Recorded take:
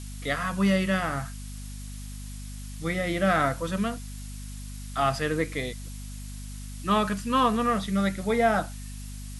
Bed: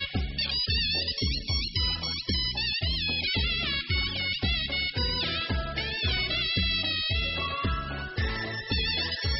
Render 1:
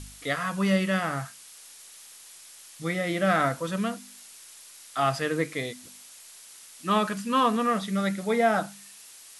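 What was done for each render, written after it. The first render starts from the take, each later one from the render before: de-hum 50 Hz, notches 5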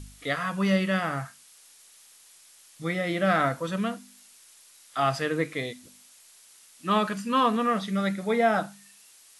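noise print and reduce 6 dB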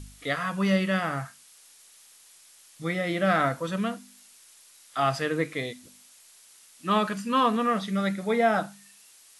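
nothing audible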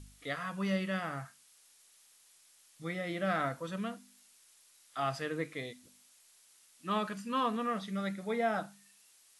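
gain -9 dB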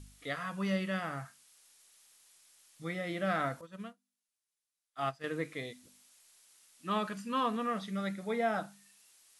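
3.61–5.24 upward expander 2.5:1, over -49 dBFS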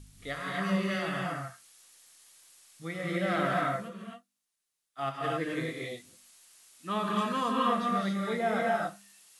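non-linear reverb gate 0.3 s rising, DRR -3.5 dB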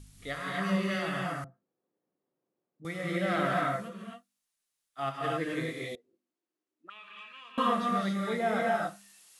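1.44–2.85 Butterworth band-pass 270 Hz, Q 0.9; 5.95–7.58 auto-wah 260–2500 Hz, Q 6.4, up, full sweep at -34 dBFS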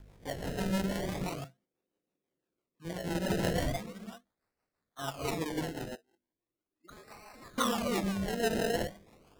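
decimation with a swept rate 26×, swing 100% 0.38 Hz; rotary speaker horn 6 Hz

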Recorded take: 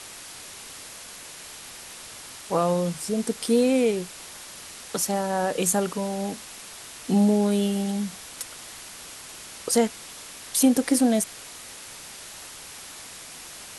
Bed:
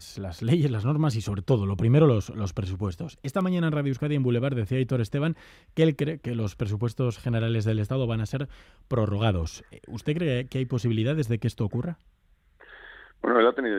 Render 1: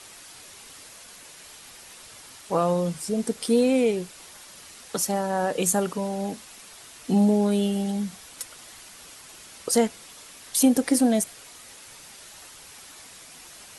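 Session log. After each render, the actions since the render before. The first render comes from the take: denoiser 6 dB, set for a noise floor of -42 dBFS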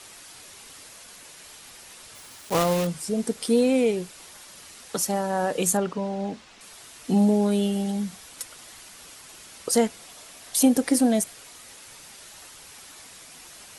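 2.15–2.87 block floating point 3-bit; 5.77–6.61 air absorption 110 m; 9.99–10.67 bell 680 Hz +7 dB 0.36 oct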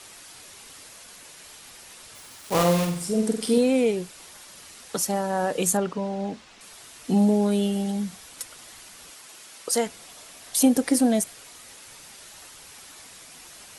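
2.39–3.58 flutter echo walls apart 7.9 m, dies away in 0.51 s; 9.11–9.86 HPF 240 Hz -> 540 Hz 6 dB/oct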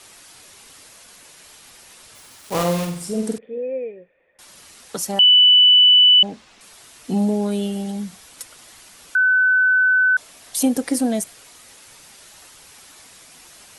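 3.38–4.39 vocal tract filter e; 5.19–6.23 bleep 2980 Hz -8 dBFS; 9.15–10.17 bleep 1510 Hz -12.5 dBFS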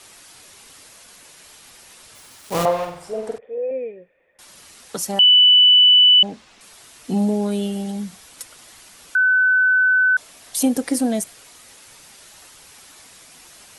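2.65–3.71 EQ curve 130 Hz 0 dB, 190 Hz -18 dB, 330 Hz -5 dB, 700 Hz +8 dB, 9100 Hz -14 dB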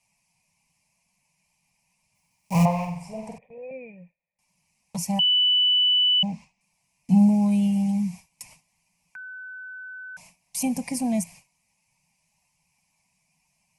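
gate with hold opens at -32 dBFS; EQ curve 110 Hz 0 dB, 170 Hz +11 dB, 380 Hz -24 dB, 610 Hz -7 dB, 980 Hz +1 dB, 1400 Hz -28 dB, 2400 Hz +4 dB, 3500 Hz -18 dB, 5200 Hz -4 dB, 14000 Hz -8 dB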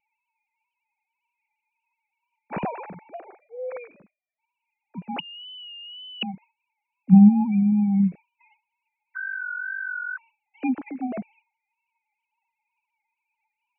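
sine-wave speech; wow and flutter 61 cents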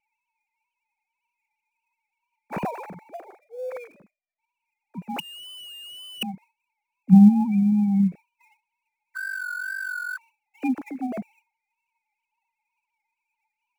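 switching dead time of 0.054 ms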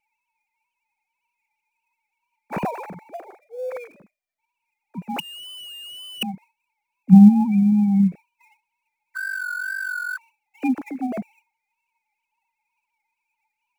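gain +3 dB

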